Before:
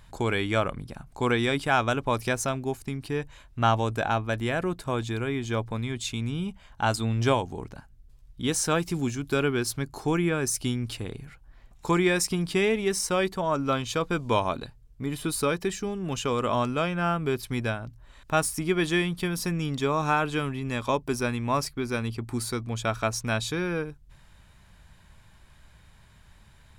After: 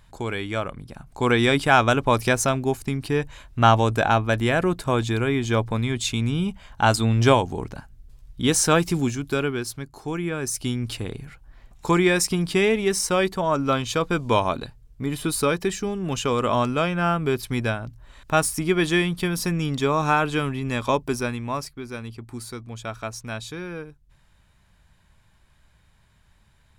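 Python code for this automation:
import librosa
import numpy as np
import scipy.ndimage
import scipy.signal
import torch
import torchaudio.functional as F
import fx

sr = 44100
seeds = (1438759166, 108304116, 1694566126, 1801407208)

y = fx.gain(x, sr, db=fx.line((0.76, -2.0), (1.46, 6.5), (8.87, 6.5), (9.96, -5.0), (10.93, 4.0), (21.01, 4.0), (21.77, -5.0)))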